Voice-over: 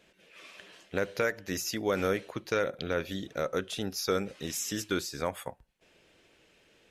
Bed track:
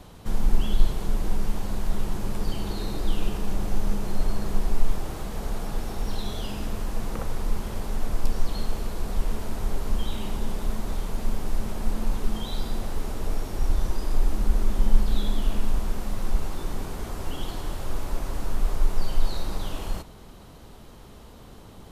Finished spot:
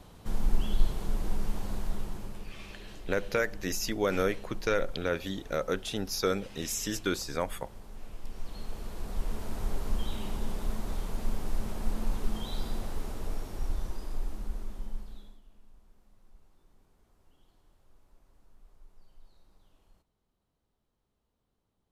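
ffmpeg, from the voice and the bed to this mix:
-filter_complex "[0:a]adelay=2150,volume=0.5dB[a];[1:a]volume=7dB,afade=t=out:st=1.74:d=0.78:silence=0.251189,afade=t=in:st=8.22:d=1.38:silence=0.237137,afade=t=out:st=12.68:d=2.73:silence=0.0354813[b];[a][b]amix=inputs=2:normalize=0"

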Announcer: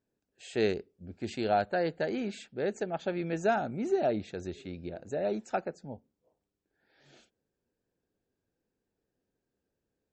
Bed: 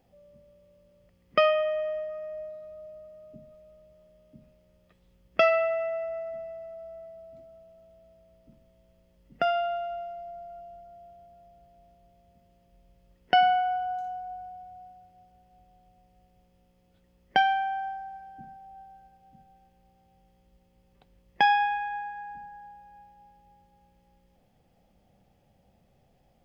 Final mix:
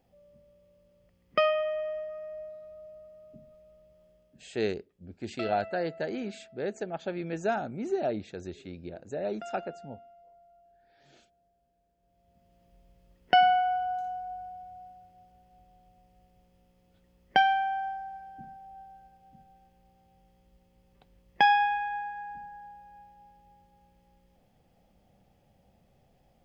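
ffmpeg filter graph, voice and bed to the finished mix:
-filter_complex "[0:a]adelay=4000,volume=-1.5dB[a];[1:a]volume=13.5dB,afade=t=out:st=4.09:d=0.5:silence=0.211349,afade=t=in:st=11.97:d=0.69:silence=0.149624[b];[a][b]amix=inputs=2:normalize=0"

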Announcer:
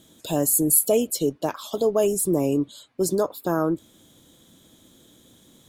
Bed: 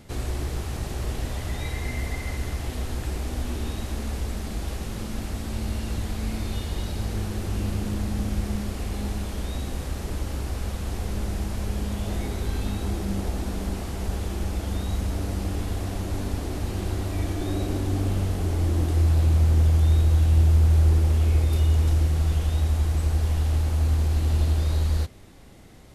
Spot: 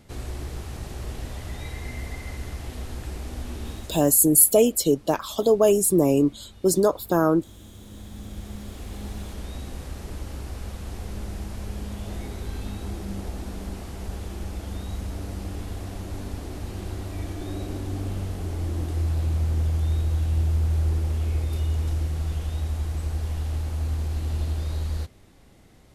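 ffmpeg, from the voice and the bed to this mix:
-filter_complex "[0:a]adelay=3650,volume=3dB[a];[1:a]volume=10.5dB,afade=t=out:st=3.72:d=0.43:silence=0.16788,afade=t=in:st=7.71:d=1.5:silence=0.177828[b];[a][b]amix=inputs=2:normalize=0"

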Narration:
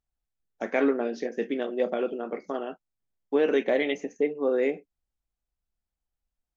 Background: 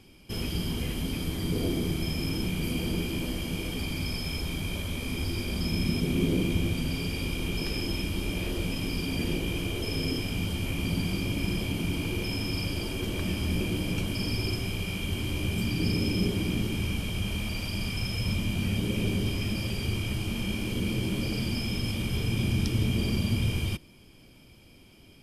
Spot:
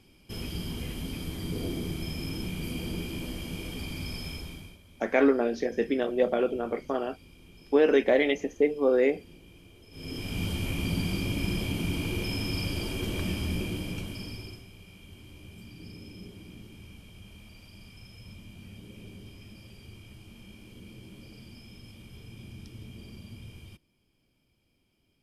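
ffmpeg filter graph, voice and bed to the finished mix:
-filter_complex "[0:a]adelay=4400,volume=2dB[a];[1:a]volume=17.5dB,afade=t=out:st=4.25:d=0.53:silence=0.125893,afade=t=in:st=9.91:d=0.54:silence=0.0794328,afade=t=out:st=13.2:d=1.46:silence=0.125893[b];[a][b]amix=inputs=2:normalize=0"

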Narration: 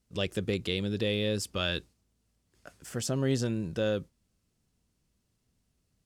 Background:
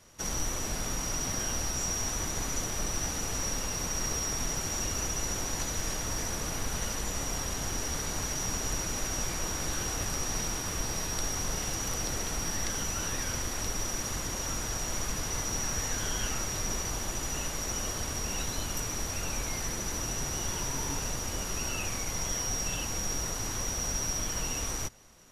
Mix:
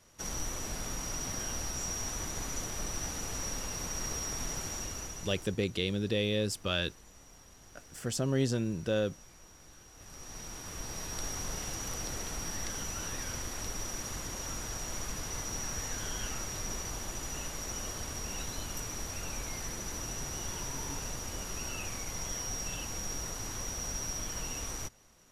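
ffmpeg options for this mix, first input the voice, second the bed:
-filter_complex "[0:a]adelay=5100,volume=-1dB[a];[1:a]volume=13dB,afade=t=out:st=4.61:d=0.97:silence=0.125893,afade=t=in:st=9.93:d=1.34:silence=0.133352[b];[a][b]amix=inputs=2:normalize=0"

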